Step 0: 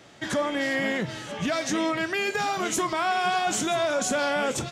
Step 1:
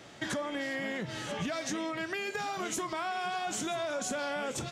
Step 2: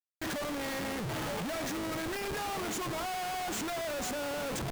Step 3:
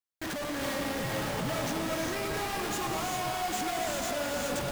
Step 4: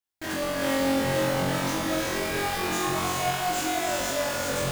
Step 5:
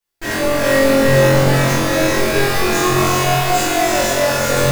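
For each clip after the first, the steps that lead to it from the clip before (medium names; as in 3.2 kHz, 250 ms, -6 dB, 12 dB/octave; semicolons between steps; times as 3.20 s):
compression 6:1, threshold -32 dBFS, peak gain reduction 10.5 dB
Schmitt trigger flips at -40 dBFS
gated-style reverb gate 440 ms rising, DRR 0 dB
flutter echo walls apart 3.8 m, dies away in 0.86 s
simulated room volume 160 m³, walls furnished, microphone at 4.2 m; trim +3 dB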